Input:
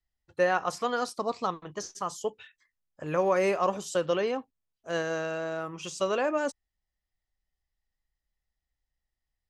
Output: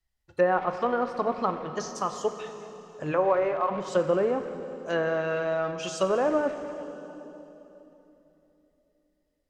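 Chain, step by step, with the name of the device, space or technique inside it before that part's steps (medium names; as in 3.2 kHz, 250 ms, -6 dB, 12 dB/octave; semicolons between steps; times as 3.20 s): low-pass that closes with the level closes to 1.2 kHz, closed at -24.5 dBFS; 3.11–3.70 s: high-pass 310 Hz -> 830 Hz 12 dB/octave; saturated reverb return (on a send at -6 dB: reverberation RT60 3.2 s, pre-delay 4 ms + saturation -27 dBFS, distortion -13 dB); on the sum: trim +3.5 dB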